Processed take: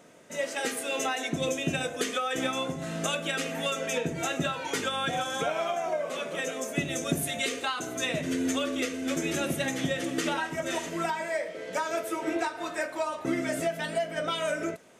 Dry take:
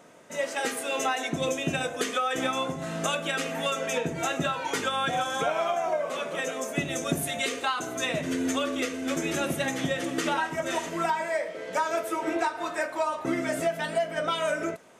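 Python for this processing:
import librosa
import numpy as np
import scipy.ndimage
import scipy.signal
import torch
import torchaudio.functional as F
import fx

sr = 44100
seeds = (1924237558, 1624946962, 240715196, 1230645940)

y = fx.peak_eq(x, sr, hz=1000.0, db=-5.0, octaves=1.2)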